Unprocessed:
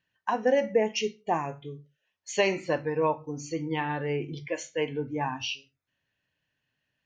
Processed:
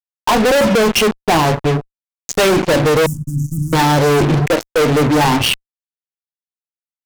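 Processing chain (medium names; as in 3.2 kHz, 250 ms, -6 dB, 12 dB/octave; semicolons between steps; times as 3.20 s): local Wiener filter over 25 samples; fuzz box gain 49 dB, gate -46 dBFS; 3.06–3.73 s: inverse Chebyshev band-stop 390–4200 Hz, stop band 40 dB; trim +2.5 dB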